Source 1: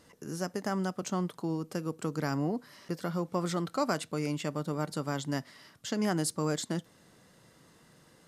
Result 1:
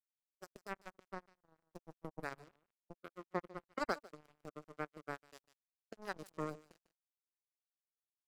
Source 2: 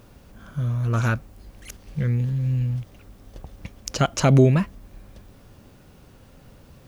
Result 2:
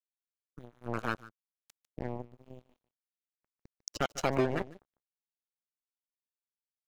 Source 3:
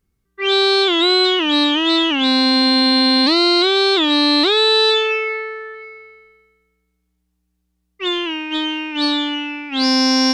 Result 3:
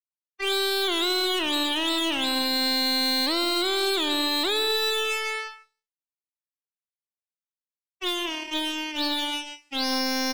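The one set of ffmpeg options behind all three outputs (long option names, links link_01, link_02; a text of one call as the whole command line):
ffmpeg -i in.wav -filter_complex "[0:a]asplit=2[link_01][link_02];[link_02]adelay=216,lowpass=frequency=2100:poles=1,volume=-15.5dB,asplit=2[link_03][link_04];[link_04]adelay=216,lowpass=frequency=2100:poles=1,volume=0.48,asplit=2[link_05][link_06];[link_06]adelay=216,lowpass=frequency=2100:poles=1,volume=0.48,asplit=2[link_07][link_08];[link_08]adelay=216,lowpass=frequency=2100:poles=1,volume=0.48[link_09];[link_03][link_05][link_07][link_09]amix=inputs=4:normalize=0[link_10];[link_01][link_10]amix=inputs=2:normalize=0,aeval=exprs='0.562*(cos(1*acos(clip(val(0)/0.562,-1,1)))-cos(1*PI/2))+0.0251*(cos(3*acos(clip(val(0)/0.562,-1,1)))-cos(3*PI/2))+0.01*(cos(7*acos(clip(val(0)/0.562,-1,1)))-cos(7*PI/2))+0.0501*(cos(8*acos(clip(val(0)/0.562,-1,1)))-cos(8*PI/2))':channel_layout=same,acrossover=split=320|3900[link_11][link_12][link_13];[link_11]acompressor=threshold=-34dB:ratio=4[link_14];[link_12]acompressor=threshold=-19dB:ratio=4[link_15];[link_13]acompressor=threshold=-25dB:ratio=4[link_16];[link_14][link_15][link_16]amix=inputs=3:normalize=0,acrusher=bits=3:mix=0:aa=0.5,asplit=2[link_17][link_18];[link_18]aecho=0:1:149:0.211[link_19];[link_17][link_19]amix=inputs=2:normalize=0,afftdn=noise_reduction=14:noise_floor=-32,volume=-5.5dB" out.wav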